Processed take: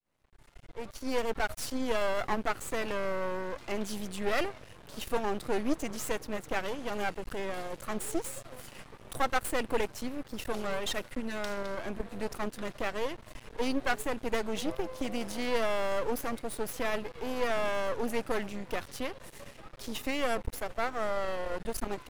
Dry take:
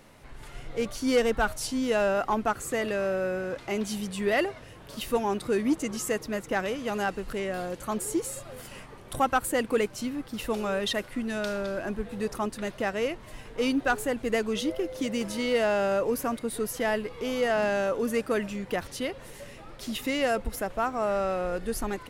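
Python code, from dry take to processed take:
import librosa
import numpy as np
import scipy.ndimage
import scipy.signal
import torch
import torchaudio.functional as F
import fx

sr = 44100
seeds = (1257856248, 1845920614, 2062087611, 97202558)

y = fx.fade_in_head(x, sr, length_s=1.68)
y = np.maximum(y, 0.0)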